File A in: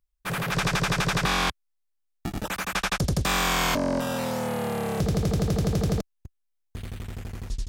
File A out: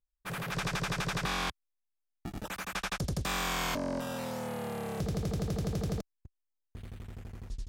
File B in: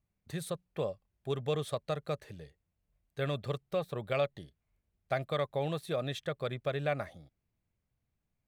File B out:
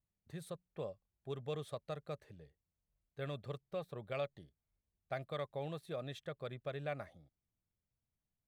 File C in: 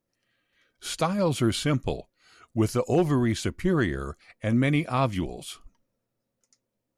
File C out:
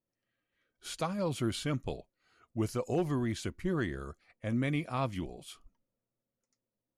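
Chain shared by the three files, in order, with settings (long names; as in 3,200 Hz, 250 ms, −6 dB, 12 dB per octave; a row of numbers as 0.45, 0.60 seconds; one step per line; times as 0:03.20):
one half of a high-frequency compander decoder only
level −8.5 dB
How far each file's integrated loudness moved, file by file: −8.5, −8.5, −8.5 LU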